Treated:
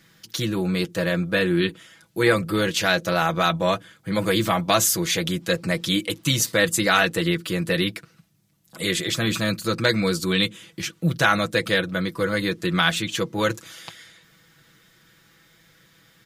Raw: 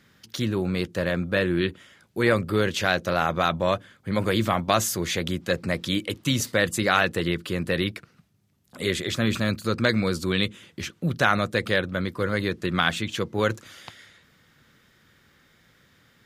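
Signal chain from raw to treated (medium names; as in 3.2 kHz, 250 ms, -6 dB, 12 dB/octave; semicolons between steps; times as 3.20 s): treble shelf 4 kHz +7 dB; comb 6.1 ms, depth 65%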